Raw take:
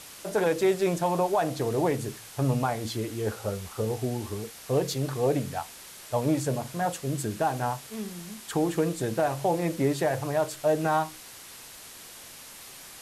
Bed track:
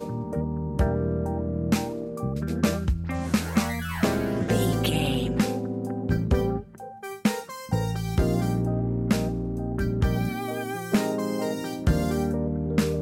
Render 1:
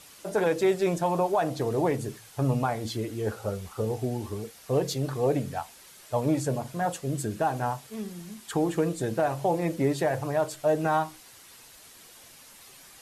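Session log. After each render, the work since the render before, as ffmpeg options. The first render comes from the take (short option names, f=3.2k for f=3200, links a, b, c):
-af "afftdn=nr=7:nf=-46"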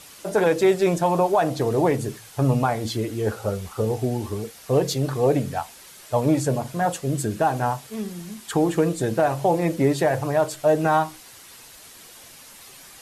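-af "volume=5.5dB"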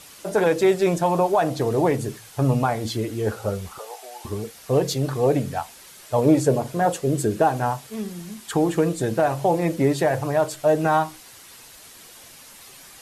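-filter_complex "[0:a]asettb=1/sr,asplit=3[a][b][c];[a]atrim=end=3.784[d];[b]atrim=start=3.78:end=4.25,asetpts=PTS-STARTPTS,afade=t=in:d=0.004:c=qsin,afade=t=out:st=0.466:d=0.004:c=qsin,highpass=f=730:w=0.5412,highpass=f=730:w=1.3066[e];[c]atrim=start=4.246[f];[d][e]acrossfade=d=0.004:c1=hsin:c2=qsin[g];[g][f]acrossfade=d=0.004:c1=qsin:c2=hsin,asettb=1/sr,asplit=3[h][i][j];[h]atrim=end=6.184[k];[i]atrim=start=6.18:end=7.49,asetpts=PTS-STARTPTS,afade=t=in:d=0.004:c=qsin,afade=t=out:st=1.306:d=0.004:c=qsin,equalizer=f=420:w=1.5:g=7[l];[j]atrim=start=7.486[m];[k][l]acrossfade=d=0.004:c1=hsin:c2=qsin[n];[n][m]acrossfade=d=0.004:c1=qsin:c2=hsin"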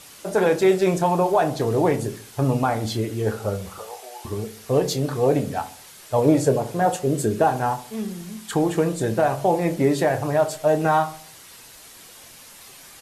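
-filter_complex "[0:a]asplit=2[a][b];[b]adelay=27,volume=-10.5dB[c];[a][c]amix=inputs=2:normalize=0,asplit=2[d][e];[e]adelay=69,lowpass=f=1.1k:p=1,volume=-13dB,asplit=2[f][g];[g]adelay=69,lowpass=f=1.1k:p=1,volume=0.5,asplit=2[h][i];[i]adelay=69,lowpass=f=1.1k:p=1,volume=0.5,asplit=2[j][k];[k]adelay=69,lowpass=f=1.1k:p=1,volume=0.5,asplit=2[l][m];[m]adelay=69,lowpass=f=1.1k:p=1,volume=0.5[n];[d][f][h][j][l][n]amix=inputs=6:normalize=0"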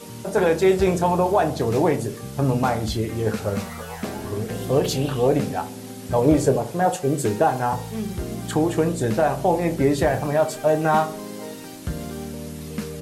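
-filter_complex "[1:a]volume=-7dB[a];[0:a][a]amix=inputs=2:normalize=0"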